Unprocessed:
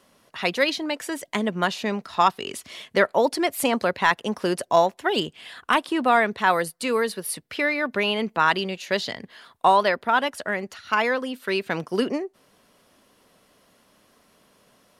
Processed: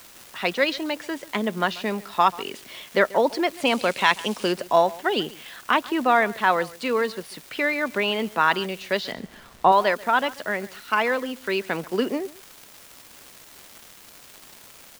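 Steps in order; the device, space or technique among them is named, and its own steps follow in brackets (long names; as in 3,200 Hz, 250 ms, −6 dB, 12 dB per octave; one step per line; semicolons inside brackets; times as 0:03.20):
78 rpm shellac record (band-pass filter 160–4,600 Hz; surface crackle 350 per second −33 dBFS; white noise bed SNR 25 dB)
0:03.66–0:04.52: gain on a spectral selection 2,100–11,000 Hz +7 dB
0:09.12–0:09.72: spectral tilt −2.5 dB per octave
single-tap delay 138 ms −20.5 dB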